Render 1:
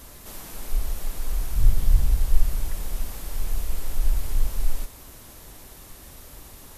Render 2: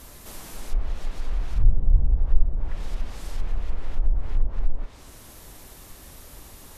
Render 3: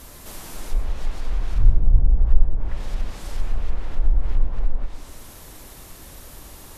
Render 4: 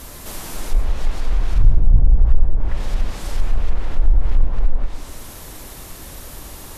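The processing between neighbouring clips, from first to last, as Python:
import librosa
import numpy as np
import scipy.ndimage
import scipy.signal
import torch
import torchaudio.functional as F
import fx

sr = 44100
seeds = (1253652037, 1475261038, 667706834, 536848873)

y1 = fx.env_lowpass_down(x, sr, base_hz=600.0, full_db=-13.0)
y2 = fx.rev_plate(y1, sr, seeds[0], rt60_s=1.0, hf_ratio=0.6, predelay_ms=90, drr_db=7.0)
y2 = F.gain(torch.from_numpy(y2), 2.5).numpy()
y3 = 10.0 ** (-8.5 / 20.0) * np.tanh(y2 / 10.0 ** (-8.5 / 20.0))
y3 = F.gain(torch.from_numpy(y3), 6.0).numpy()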